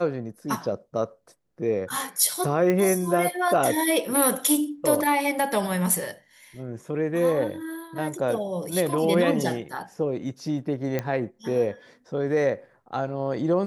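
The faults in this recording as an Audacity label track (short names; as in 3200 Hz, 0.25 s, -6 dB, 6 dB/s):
2.700000	2.700000	pop -12 dBFS
10.990000	10.990000	pop -13 dBFS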